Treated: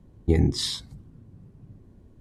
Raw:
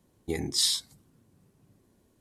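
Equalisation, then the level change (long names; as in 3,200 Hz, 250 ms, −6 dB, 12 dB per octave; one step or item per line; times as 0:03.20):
RIAA equalisation playback
+4.0 dB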